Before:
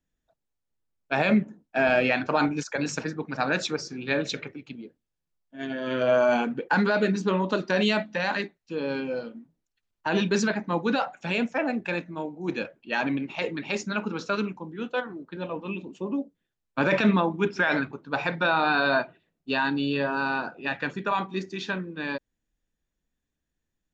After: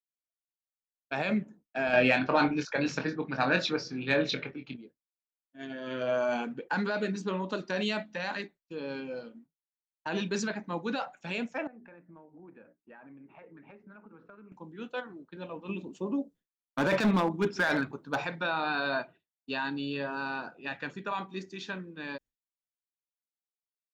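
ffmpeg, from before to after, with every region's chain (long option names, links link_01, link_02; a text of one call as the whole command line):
ffmpeg -i in.wav -filter_complex "[0:a]asettb=1/sr,asplit=3[link_01][link_02][link_03];[link_01]atrim=end=1.934[link_04];[link_02]atrim=start=1.93:end=4.77,asetpts=PTS-STARTPTS,afade=type=in:duration=0.004:curve=qsin,afade=type=out:start_time=2.836:duration=0.004:curve=qsin,lowpass=frequency=4700:width=0.5412,lowpass=frequency=4700:width=1.3066,acontrast=60,asplit=2[link_05][link_06];[link_06]adelay=23,volume=-6.5dB[link_07];[link_05][link_07]amix=inputs=2:normalize=0,atrim=end_sample=125244[link_08];[link_03]atrim=start=4.766[link_09];[link_04][link_08]acrossfade=duration=0.004:curve1=hsin:curve2=qsin[link_10];[link_10][link_09]acrossfade=duration=0.004:curve1=qsin:curve2=hsin,asettb=1/sr,asplit=3[link_11][link_12][link_13];[link_11]atrim=end=11.674[link_14];[link_12]atrim=start=11.67:end=14.52,asetpts=PTS-STARTPTS,afade=type=in:duration=0.004:curve=qsin,afade=type=out:start_time=2.846:duration=0.004:curve=qsin,lowpass=frequency=1800:width=0.5412,lowpass=frequency=1800:width=1.3066,bandreject=frequency=60:width_type=h:width=6,bandreject=frequency=120:width_type=h:width=6,bandreject=frequency=180:width_type=h:width=6,bandreject=frequency=240:width_type=h:width=6,bandreject=frequency=300:width_type=h:width=6,bandreject=frequency=360:width_type=h:width=6,bandreject=frequency=420:width_type=h:width=6,acompressor=threshold=-39dB:ratio=20:attack=3.2:release=140:knee=1:detection=peak[link_15];[link_13]atrim=start=14.516[link_16];[link_14][link_15]acrossfade=duration=0.004:curve1=hsin:curve2=qsin[link_17];[link_17][link_16]acrossfade=duration=0.004:curve1=qsin:curve2=hsin,asettb=1/sr,asplit=3[link_18][link_19][link_20];[link_18]atrim=end=15.694[link_21];[link_19]atrim=start=15.69:end=18.25,asetpts=PTS-STARTPTS,afade=type=in:duration=0.004:curve=qsin,afade=type=out:start_time=2.556:duration=0.004:curve=qsin,equalizer=frequency=2500:width_type=o:width=0.66:gain=-5,asoftclip=type=hard:threshold=-18dB,acontrast=42[link_22];[link_20]atrim=start=18.246[link_23];[link_21][link_22]acrossfade=duration=0.004:curve1=hsin:curve2=qsin[link_24];[link_24][link_23]acrossfade=duration=0.004:curve1=qsin:curve2=hsin,agate=range=-33dB:threshold=-42dB:ratio=3:detection=peak,highshelf=frequency=4700:gain=4.5,volume=-8dB" out.wav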